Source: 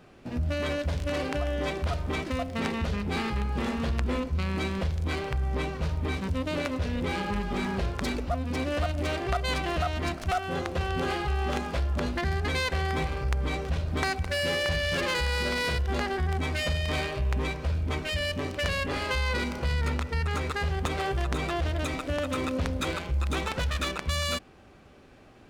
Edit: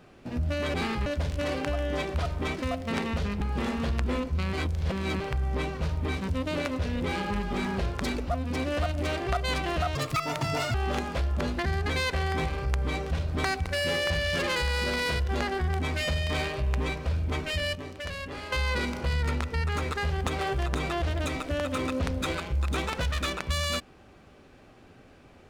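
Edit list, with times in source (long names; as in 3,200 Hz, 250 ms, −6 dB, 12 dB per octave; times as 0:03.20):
0:03.09–0:03.41: move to 0:00.74
0:04.53–0:05.20: reverse
0:09.95–0:11.33: play speed 174%
0:18.34–0:19.11: clip gain −7.5 dB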